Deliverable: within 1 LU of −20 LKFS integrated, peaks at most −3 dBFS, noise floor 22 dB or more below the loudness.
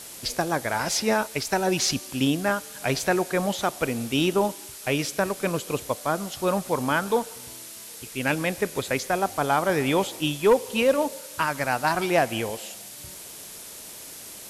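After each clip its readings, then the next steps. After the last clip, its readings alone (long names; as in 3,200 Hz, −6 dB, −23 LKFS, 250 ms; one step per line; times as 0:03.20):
background noise floor −42 dBFS; target noise floor −47 dBFS; integrated loudness −25.0 LKFS; sample peak −10.0 dBFS; target loudness −20.0 LKFS
→ noise reduction from a noise print 6 dB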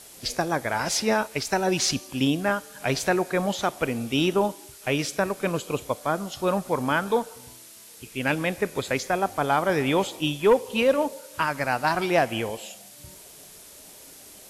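background noise floor −47 dBFS; target noise floor −48 dBFS
→ noise reduction from a noise print 6 dB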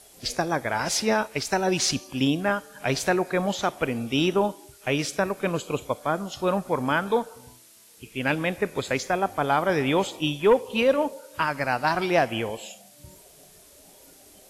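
background noise floor −53 dBFS; integrated loudness −25.5 LKFS; sample peak −10.0 dBFS; target loudness −20.0 LKFS
→ level +5.5 dB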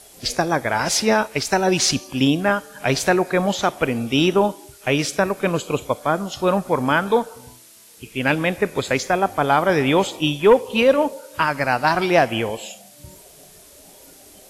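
integrated loudness −20.0 LKFS; sample peak −4.5 dBFS; background noise floor −47 dBFS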